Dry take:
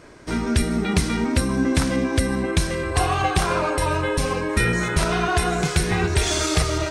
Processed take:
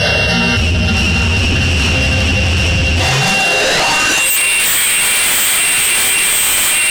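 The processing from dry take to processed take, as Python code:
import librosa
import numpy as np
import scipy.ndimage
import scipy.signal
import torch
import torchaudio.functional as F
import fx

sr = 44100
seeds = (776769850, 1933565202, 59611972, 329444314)

y = np.r_[np.sort(x[:len(x) // 16 * 16].reshape(-1, 16), axis=1).ravel(), x[len(x) // 16 * 16:]]
y = scipy.signal.sosfilt(scipy.signal.butter(4, 7400.0, 'lowpass', fs=sr, output='sos'), y)
y = fx.high_shelf(y, sr, hz=2100.0, db=11.5)
y = fx.fixed_phaser(y, sr, hz=1600.0, stages=8)
y = y + 10.0 ** (-5.5 / 20.0) * np.pad(y, (int(661 * sr / 1000.0), 0))[:len(y)]
y = fx.room_shoebox(y, sr, seeds[0], volume_m3=460.0, walls='mixed', distance_m=5.7)
y = fx.filter_sweep_highpass(y, sr, from_hz=90.0, to_hz=3100.0, start_s=3.02, end_s=4.38, q=6.6)
y = fx.peak_eq(y, sr, hz=100.0, db=-7.0, octaves=1.2)
y = fx.fold_sine(y, sr, drive_db=10, ceiling_db=7.0)
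y = fx.env_flatten(y, sr, amount_pct=100)
y = F.gain(torch.from_numpy(y), -17.5).numpy()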